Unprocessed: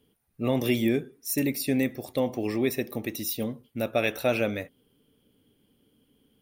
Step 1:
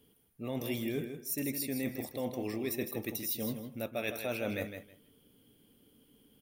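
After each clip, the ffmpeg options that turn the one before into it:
ffmpeg -i in.wav -af "highshelf=frequency=7200:gain=7.5,areverse,acompressor=threshold=-33dB:ratio=6,areverse,aecho=1:1:159|318|477:0.398|0.0677|0.0115" out.wav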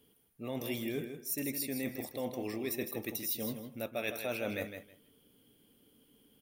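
ffmpeg -i in.wav -af "lowshelf=frequency=240:gain=-4.5" out.wav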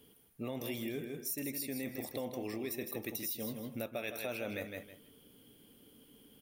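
ffmpeg -i in.wav -af "acompressor=threshold=-41dB:ratio=6,volume=5dB" out.wav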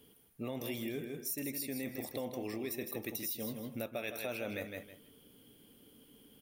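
ffmpeg -i in.wav -af anull out.wav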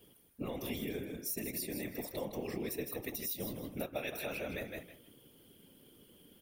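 ffmpeg -i in.wav -af "afftfilt=real='hypot(re,im)*cos(2*PI*random(0))':imag='hypot(re,im)*sin(2*PI*random(1))':win_size=512:overlap=0.75,volume=6dB" out.wav

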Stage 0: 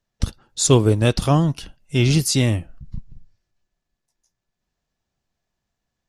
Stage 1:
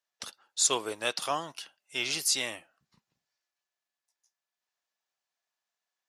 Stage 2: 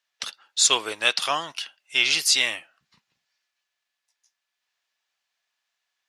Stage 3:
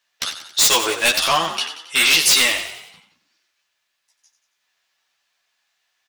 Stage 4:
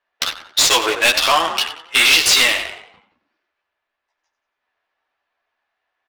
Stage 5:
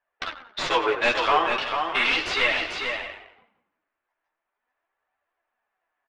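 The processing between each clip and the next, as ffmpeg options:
ffmpeg -i in.wav -af "highpass=830,volume=-4.5dB" out.wav
ffmpeg -i in.wav -af "equalizer=frequency=2700:width=0.45:gain=12" out.wav
ffmpeg -i in.wav -filter_complex "[0:a]aeval=exprs='0.15*(abs(mod(val(0)/0.15+3,4)-2)-1)':channel_layout=same,asplit=2[link_01][link_02];[link_02]adelay=12,volume=-2dB[link_03];[link_01][link_03]amix=inputs=2:normalize=0,asplit=2[link_04][link_05];[link_05]asplit=6[link_06][link_07][link_08][link_09][link_10][link_11];[link_06]adelay=91,afreqshift=39,volume=-10dB[link_12];[link_07]adelay=182,afreqshift=78,volume=-15.8dB[link_13];[link_08]adelay=273,afreqshift=117,volume=-21.7dB[link_14];[link_09]adelay=364,afreqshift=156,volume=-27.5dB[link_15];[link_10]adelay=455,afreqshift=195,volume=-33.4dB[link_16];[link_11]adelay=546,afreqshift=234,volume=-39.2dB[link_17];[link_12][link_13][link_14][link_15][link_16][link_17]amix=inputs=6:normalize=0[link_18];[link_04][link_18]amix=inputs=2:normalize=0,volume=6.5dB" out.wav
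ffmpeg -i in.wav -filter_complex "[0:a]asplit=2[link_01][link_02];[link_02]acompressor=threshold=-22dB:ratio=6,volume=1dB[link_03];[link_01][link_03]amix=inputs=2:normalize=0,equalizer=frequency=150:width=1.5:gain=-13,adynamicsmooth=sensitivity=1.5:basefreq=1300" out.wav
ffmpeg -i in.wav -filter_complex "[0:a]lowpass=2000,flanger=delay=1.1:depth=8.6:regen=41:speed=0.39:shape=triangular,asplit=2[link_01][link_02];[link_02]aecho=0:1:444|606:0.531|0.141[link_03];[link_01][link_03]amix=inputs=2:normalize=0" out.wav

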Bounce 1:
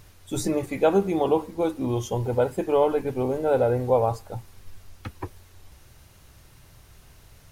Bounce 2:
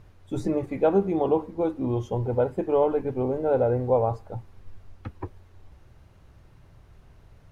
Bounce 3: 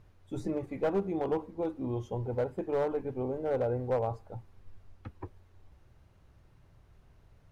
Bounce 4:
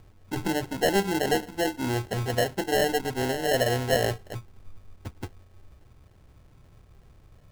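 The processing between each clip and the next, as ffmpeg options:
ffmpeg -i in.wav -af "lowpass=frequency=1000:poles=1" out.wav
ffmpeg -i in.wav -af "aeval=exprs='clip(val(0),-1,0.133)':channel_layout=same,volume=-7.5dB" out.wav
ffmpeg -i in.wav -af "acrusher=samples=37:mix=1:aa=0.000001,volume=6dB" out.wav

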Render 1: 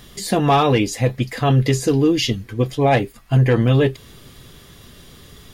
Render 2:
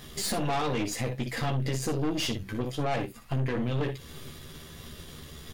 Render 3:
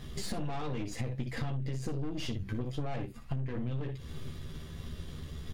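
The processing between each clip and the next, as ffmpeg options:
ffmpeg -i in.wav -filter_complex "[0:a]acompressor=threshold=-24dB:ratio=4,asplit=2[link_01][link_02];[link_02]aecho=0:1:13|59|75:0.668|0.355|0.168[link_03];[link_01][link_03]amix=inputs=2:normalize=0,aeval=exprs='(tanh(17.8*val(0)+0.65)-tanh(0.65))/17.8':channel_layout=same" out.wav
ffmpeg -i in.wav -af "lowshelf=frequency=210:gain=11.5,acompressor=threshold=-26dB:ratio=6,highshelf=frequency=8900:gain=-10.5,volume=-4.5dB" out.wav

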